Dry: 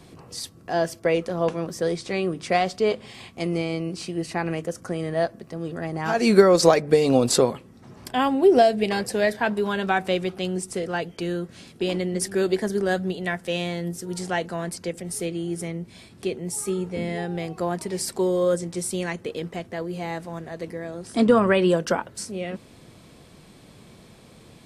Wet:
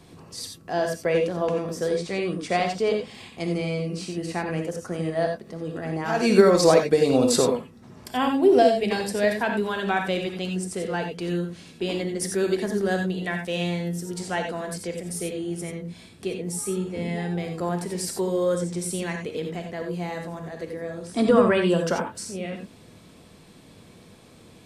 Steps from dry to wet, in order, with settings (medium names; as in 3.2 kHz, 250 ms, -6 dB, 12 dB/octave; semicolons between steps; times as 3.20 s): gated-style reverb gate 110 ms rising, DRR 3.5 dB; trim -2.5 dB